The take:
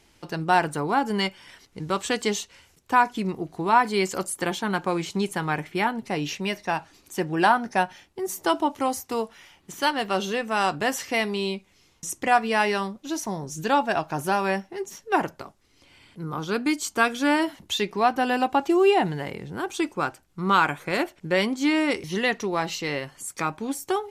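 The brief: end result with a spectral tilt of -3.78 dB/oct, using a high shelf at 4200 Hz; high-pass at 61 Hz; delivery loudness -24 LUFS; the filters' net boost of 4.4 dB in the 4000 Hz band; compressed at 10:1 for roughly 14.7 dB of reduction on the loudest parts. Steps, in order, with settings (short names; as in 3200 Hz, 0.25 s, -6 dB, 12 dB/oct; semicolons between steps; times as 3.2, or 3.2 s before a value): HPF 61 Hz; bell 4000 Hz +8.5 dB; high shelf 4200 Hz -5 dB; compressor 10:1, threshold -29 dBFS; gain +10 dB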